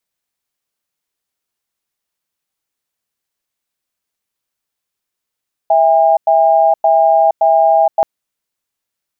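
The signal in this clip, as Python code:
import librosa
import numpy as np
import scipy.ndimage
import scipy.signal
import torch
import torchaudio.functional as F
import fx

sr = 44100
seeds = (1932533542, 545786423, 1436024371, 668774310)

y = fx.cadence(sr, length_s=2.33, low_hz=656.0, high_hz=808.0, on_s=0.47, off_s=0.1, level_db=-10.0)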